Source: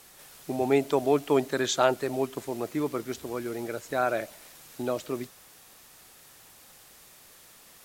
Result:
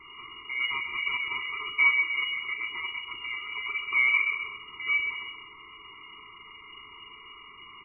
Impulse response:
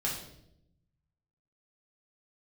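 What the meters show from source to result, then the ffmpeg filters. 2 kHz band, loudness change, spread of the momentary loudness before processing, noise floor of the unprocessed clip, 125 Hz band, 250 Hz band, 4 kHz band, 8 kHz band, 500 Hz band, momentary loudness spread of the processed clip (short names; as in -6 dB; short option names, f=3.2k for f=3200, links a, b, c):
+13.0 dB, +1.5 dB, 12 LU, -54 dBFS, under -20 dB, under -25 dB, +6.5 dB, under -40 dB, under -25 dB, 24 LU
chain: -filter_complex "[0:a]aecho=1:1:130|260|390:0.335|0.1|0.0301,acrossover=split=640[a][b];[b]acompressor=threshold=-42dB:ratio=6[c];[a][c]amix=inputs=2:normalize=0,asoftclip=type=tanh:threshold=-28.5dB,lowshelf=f=110:g=7.5,asplit=2[d][e];[e]adelay=36,volume=-9dB[f];[d][f]amix=inputs=2:normalize=0,asplit=2[g][h];[h]aeval=exprs='0.075*sin(PI/2*2*val(0)/0.075)':c=same,volume=-9.5dB[i];[g][i]amix=inputs=2:normalize=0,asuperstop=centerf=1200:order=12:qfactor=1.7,lowpass=f=2.5k:t=q:w=0.5098,lowpass=f=2.5k:t=q:w=0.6013,lowpass=f=2.5k:t=q:w=0.9,lowpass=f=2.5k:t=q:w=2.563,afreqshift=-2900,equalizer=f=210:t=o:w=1.3:g=-7.5,afftfilt=real='re*eq(mod(floor(b*sr/1024/470),2),0)':imag='im*eq(mod(floor(b*sr/1024/470),2),0)':win_size=1024:overlap=0.75,volume=8dB"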